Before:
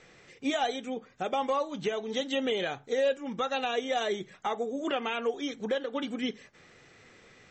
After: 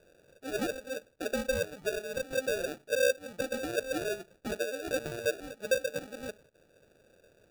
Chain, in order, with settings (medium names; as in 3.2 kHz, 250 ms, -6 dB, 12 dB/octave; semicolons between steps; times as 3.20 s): graphic EQ 125/250/500/2000 Hz -4/-8/+10/-10 dB; sample-and-hold 42×; trim -7 dB